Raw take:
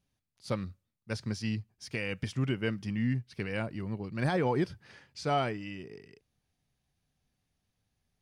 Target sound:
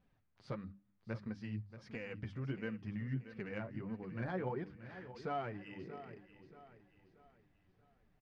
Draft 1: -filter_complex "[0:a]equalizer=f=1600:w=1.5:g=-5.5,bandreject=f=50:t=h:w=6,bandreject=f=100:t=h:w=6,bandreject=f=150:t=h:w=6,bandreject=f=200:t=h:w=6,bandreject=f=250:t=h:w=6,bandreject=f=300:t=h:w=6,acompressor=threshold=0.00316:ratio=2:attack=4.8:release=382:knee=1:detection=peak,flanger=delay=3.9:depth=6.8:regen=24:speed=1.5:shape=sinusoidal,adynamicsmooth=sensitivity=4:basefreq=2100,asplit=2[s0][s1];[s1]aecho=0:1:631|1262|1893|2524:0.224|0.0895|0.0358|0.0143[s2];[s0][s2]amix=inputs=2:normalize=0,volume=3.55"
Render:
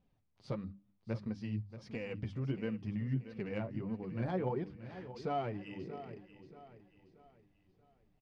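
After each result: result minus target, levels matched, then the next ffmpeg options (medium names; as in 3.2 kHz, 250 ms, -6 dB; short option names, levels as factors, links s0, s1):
2 kHz band -5.5 dB; compression: peak gain reduction -4.5 dB
-filter_complex "[0:a]equalizer=f=1600:w=1.5:g=3.5,bandreject=f=50:t=h:w=6,bandreject=f=100:t=h:w=6,bandreject=f=150:t=h:w=6,bandreject=f=200:t=h:w=6,bandreject=f=250:t=h:w=6,bandreject=f=300:t=h:w=6,acompressor=threshold=0.00316:ratio=2:attack=4.8:release=382:knee=1:detection=peak,flanger=delay=3.9:depth=6.8:regen=24:speed=1.5:shape=sinusoidal,adynamicsmooth=sensitivity=4:basefreq=2100,asplit=2[s0][s1];[s1]aecho=0:1:631|1262|1893|2524:0.224|0.0895|0.0358|0.0143[s2];[s0][s2]amix=inputs=2:normalize=0,volume=3.55"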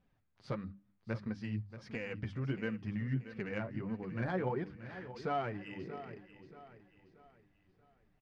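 compression: peak gain reduction -4 dB
-filter_complex "[0:a]equalizer=f=1600:w=1.5:g=3.5,bandreject=f=50:t=h:w=6,bandreject=f=100:t=h:w=6,bandreject=f=150:t=h:w=6,bandreject=f=200:t=h:w=6,bandreject=f=250:t=h:w=6,bandreject=f=300:t=h:w=6,acompressor=threshold=0.00126:ratio=2:attack=4.8:release=382:knee=1:detection=peak,flanger=delay=3.9:depth=6.8:regen=24:speed=1.5:shape=sinusoidal,adynamicsmooth=sensitivity=4:basefreq=2100,asplit=2[s0][s1];[s1]aecho=0:1:631|1262|1893|2524:0.224|0.0895|0.0358|0.0143[s2];[s0][s2]amix=inputs=2:normalize=0,volume=3.55"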